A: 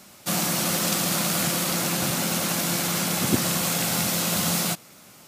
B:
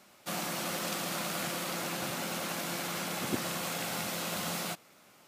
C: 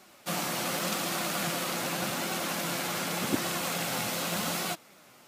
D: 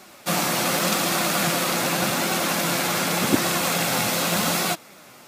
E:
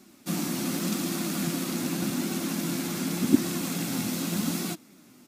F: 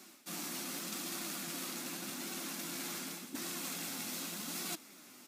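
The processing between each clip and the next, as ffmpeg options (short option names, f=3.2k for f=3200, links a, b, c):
-af "bass=f=250:g=-8,treble=f=4k:g=-7,volume=-7dB"
-af "flanger=delay=2.6:depth=5.7:regen=65:speed=0.86:shape=sinusoidal,volume=8dB"
-af "bandreject=f=3k:w=26,volume=9dB"
-af "firequalizer=gain_entry='entry(130,0);entry(260,10);entry(510,-10);entry(5900,-3)':delay=0.05:min_phase=1,volume=-6dB"
-af "areverse,acompressor=threshold=-37dB:ratio=6,areverse,highpass=f=840:p=1,volume=3.5dB"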